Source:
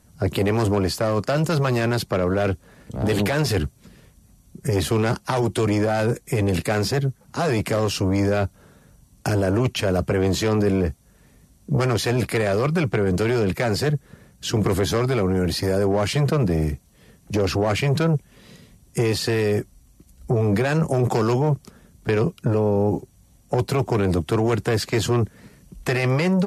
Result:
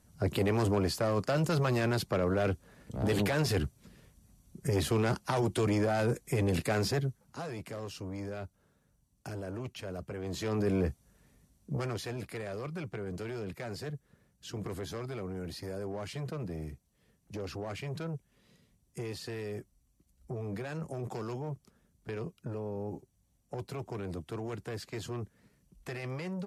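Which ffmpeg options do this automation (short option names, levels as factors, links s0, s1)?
-af "volume=1.41,afade=t=out:st=6.9:d=0.59:silence=0.281838,afade=t=in:st=10.22:d=0.6:silence=0.281838,afade=t=out:st=10.82:d=1.38:silence=0.316228"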